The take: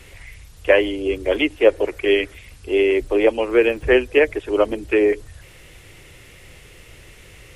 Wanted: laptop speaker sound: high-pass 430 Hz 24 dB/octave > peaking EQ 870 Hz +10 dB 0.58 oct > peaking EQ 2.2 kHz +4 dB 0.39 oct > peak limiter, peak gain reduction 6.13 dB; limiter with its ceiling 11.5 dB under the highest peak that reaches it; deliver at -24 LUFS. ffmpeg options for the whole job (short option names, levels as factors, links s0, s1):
-af "alimiter=limit=0.224:level=0:latency=1,highpass=f=430:w=0.5412,highpass=f=430:w=1.3066,equalizer=f=870:t=o:w=0.58:g=10,equalizer=f=2200:t=o:w=0.39:g=4,volume=1.41,alimiter=limit=0.237:level=0:latency=1"